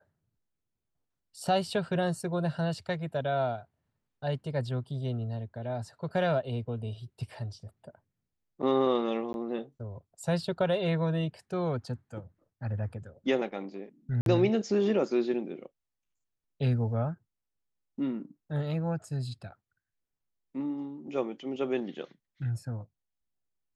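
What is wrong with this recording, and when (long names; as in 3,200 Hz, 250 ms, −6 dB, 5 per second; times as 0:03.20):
0:09.33–0:09.34: drop-out 11 ms
0:14.21–0:14.26: drop-out 52 ms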